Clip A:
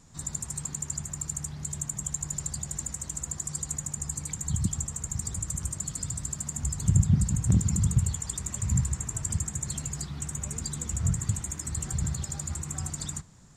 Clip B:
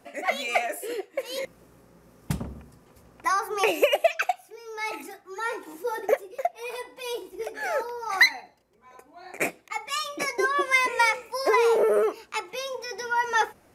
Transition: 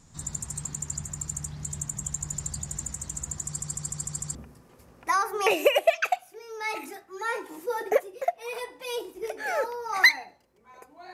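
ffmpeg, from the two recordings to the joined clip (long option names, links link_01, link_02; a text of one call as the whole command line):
ffmpeg -i cue0.wav -i cue1.wav -filter_complex "[0:a]apad=whole_dur=11.13,atrim=end=11.13,asplit=6[link_01][link_02][link_03][link_04][link_05][link_06];[link_01]atrim=end=3.602[link_07];[link_02]atrim=start=3.448:end=3.602[link_08];[link_03]atrim=start=3.448:end=3.602[link_09];[link_04]atrim=start=3.448:end=3.602[link_10];[link_05]atrim=start=3.448:end=3.602[link_11];[link_06]atrim=start=3.448:end=3.602[link_12];[1:a]atrim=start=2.518:end=9.3[link_13];[link_07][link_08]acrossfade=duration=0.004:curve1=hsin:curve2=hsin[link_14];[link_14][link_09]acrossfade=duration=0.004:curve1=hsin:curve2=hsin[link_15];[link_15][link_10]acrossfade=duration=0.004:curve1=hsin:curve2=hsin[link_16];[link_16][link_11]acrossfade=duration=0.004:curve1=hsin:curve2=hsin[link_17];[link_17][link_12]acrossfade=duration=0.004:curve1=hsin:curve2=hsin[link_18];[link_18][link_13]acrossfade=duration=0.004:curve1=hsin:curve2=hsin" out.wav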